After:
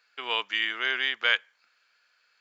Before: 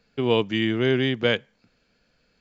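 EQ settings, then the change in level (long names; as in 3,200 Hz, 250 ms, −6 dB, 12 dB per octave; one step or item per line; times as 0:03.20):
high-pass with resonance 1,300 Hz, resonance Q 1.6
0.0 dB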